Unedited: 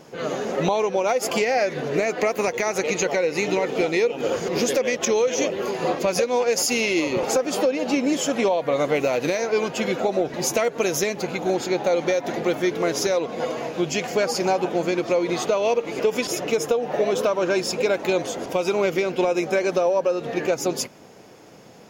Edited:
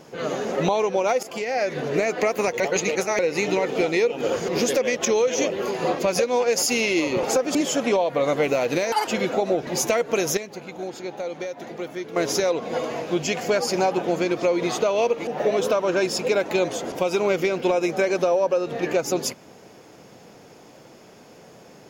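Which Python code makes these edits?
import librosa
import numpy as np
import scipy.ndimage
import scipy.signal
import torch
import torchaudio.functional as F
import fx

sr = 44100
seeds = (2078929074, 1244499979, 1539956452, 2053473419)

y = fx.edit(x, sr, fx.fade_in_from(start_s=1.23, length_s=0.53, floor_db=-16.0),
    fx.reverse_span(start_s=2.6, length_s=0.59),
    fx.cut(start_s=7.55, length_s=0.52),
    fx.speed_span(start_s=9.44, length_s=0.3, speed=1.97),
    fx.clip_gain(start_s=11.04, length_s=1.79, db=-9.5),
    fx.cut(start_s=15.94, length_s=0.87), tone=tone)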